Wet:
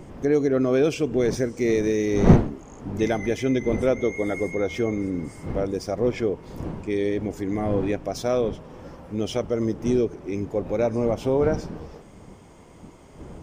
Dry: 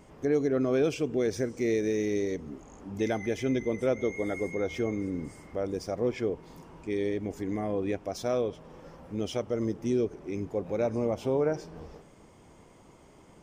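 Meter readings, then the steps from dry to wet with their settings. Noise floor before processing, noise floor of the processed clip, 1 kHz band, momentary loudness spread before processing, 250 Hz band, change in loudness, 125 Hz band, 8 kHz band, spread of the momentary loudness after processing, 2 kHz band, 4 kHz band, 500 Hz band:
-56 dBFS, -48 dBFS, +7.0 dB, 12 LU, +6.5 dB, +6.5 dB, +10.5 dB, +5.5 dB, 12 LU, +5.5 dB, +5.5 dB, +5.5 dB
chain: wind noise 270 Hz -36 dBFS; trim +5.5 dB

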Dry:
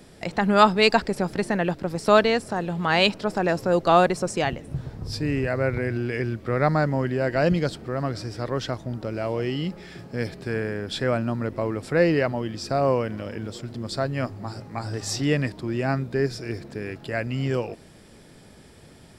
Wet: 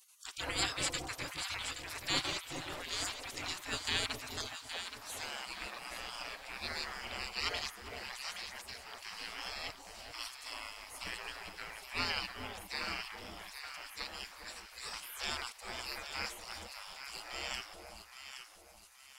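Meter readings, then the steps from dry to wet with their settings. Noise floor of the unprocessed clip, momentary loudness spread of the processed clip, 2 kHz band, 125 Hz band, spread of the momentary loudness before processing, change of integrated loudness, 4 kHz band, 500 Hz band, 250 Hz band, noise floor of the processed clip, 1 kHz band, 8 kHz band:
-49 dBFS, 12 LU, -11.0 dB, -26.0 dB, 15 LU, -15.0 dB, -5.5 dB, -26.5 dB, -26.0 dB, -57 dBFS, -18.0 dB, -2.5 dB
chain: spectral gate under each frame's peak -30 dB weak; echo whose repeats swap between lows and highs 411 ms, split 900 Hz, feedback 60%, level -4 dB; trim +5.5 dB

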